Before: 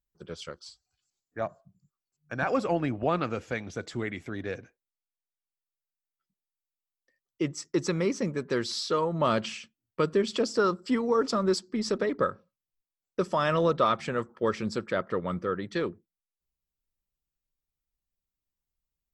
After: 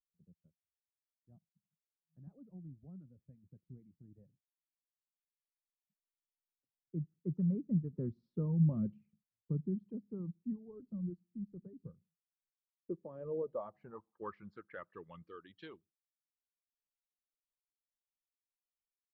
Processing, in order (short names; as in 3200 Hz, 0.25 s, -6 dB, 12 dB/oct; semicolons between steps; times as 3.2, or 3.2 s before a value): Doppler pass-by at 8.34, 22 m/s, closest 13 m; low-pass sweep 170 Hz -> 3200 Hz, 12.21–15.34; reverb removal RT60 1.8 s